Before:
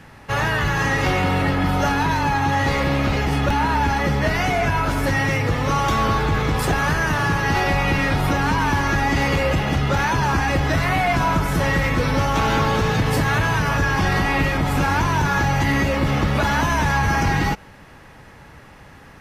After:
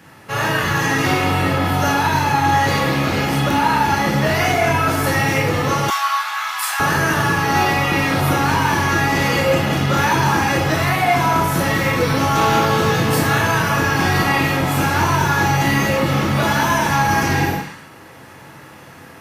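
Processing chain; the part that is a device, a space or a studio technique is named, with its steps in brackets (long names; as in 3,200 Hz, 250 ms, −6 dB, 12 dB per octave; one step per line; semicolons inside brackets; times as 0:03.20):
far laptop microphone (convolution reverb RT60 0.45 s, pre-delay 21 ms, DRR −0.5 dB; high-pass filter 140 Hz 12 dB per octave; automatic gain control gain up to 3.5 dB)
0:05.90–0:06.80: inverse Chebyshev high-pass filter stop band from 470 Hz, stop band 40 dB
0:17.43–0:17.89: healed spectral selection 840–11,000 Hz both
high-shelf EQ 9,800 Hz +11.5 dB
level −2 dB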